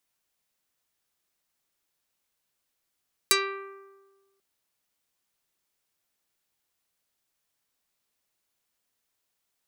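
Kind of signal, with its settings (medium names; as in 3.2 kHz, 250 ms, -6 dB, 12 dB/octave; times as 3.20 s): plucked string G4, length 1.09 s, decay 1.39 s, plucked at 0.46, dark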